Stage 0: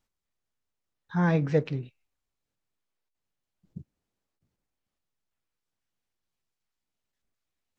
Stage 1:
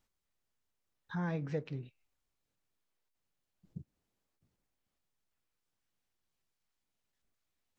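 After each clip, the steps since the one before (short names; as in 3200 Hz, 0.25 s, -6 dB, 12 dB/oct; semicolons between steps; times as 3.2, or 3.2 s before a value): compressor 2:1, threshold -43 dBFS, peak gain reduction 13.5 dB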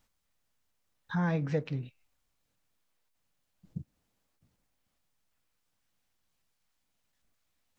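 bell 380 Hz -7 dB 0.27 oct; gain +6.5 dB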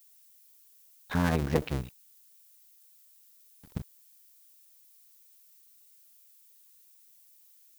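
cycle switcher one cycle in 2, muted; bit-crush 10-bit; added noise violet -65 dBFS; gain +5.5 dB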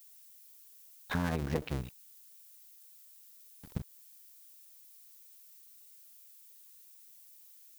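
compressor 2.5:1, threshold -35 dBFS, peak gain reduction 10.5 dB; gain +2.5 dB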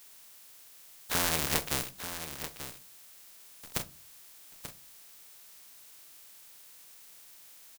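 spectral contrast lowered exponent 0.29; echo 0.886 s -10.5 dB; shoebox room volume 120 m³, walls furnished, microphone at 0.38 m; gain +3 dB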